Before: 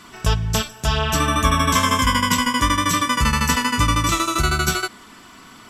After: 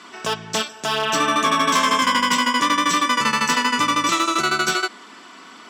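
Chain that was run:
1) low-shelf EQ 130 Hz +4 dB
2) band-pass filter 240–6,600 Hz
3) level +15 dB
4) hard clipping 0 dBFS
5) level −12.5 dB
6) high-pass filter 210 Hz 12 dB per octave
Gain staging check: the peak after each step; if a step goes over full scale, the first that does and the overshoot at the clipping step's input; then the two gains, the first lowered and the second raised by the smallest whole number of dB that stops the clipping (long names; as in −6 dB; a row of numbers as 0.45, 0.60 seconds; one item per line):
−3.0, −6.0, +9.0, 0.0, −12.5, −8.0 dBFS
step 3, 9.0 dB
step 3 +6 dB, step 5 −3.5 dB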